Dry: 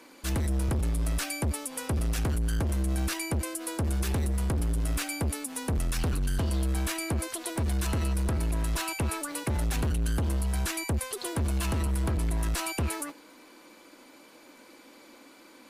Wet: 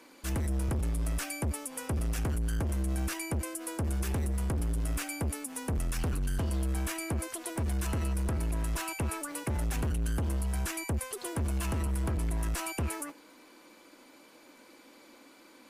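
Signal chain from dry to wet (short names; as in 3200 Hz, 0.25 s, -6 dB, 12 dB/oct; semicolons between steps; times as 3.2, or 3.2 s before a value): dynamic EQ 4000 Hz, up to -6 dB, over -54 dBFS, Q 2.3; gain -3 dB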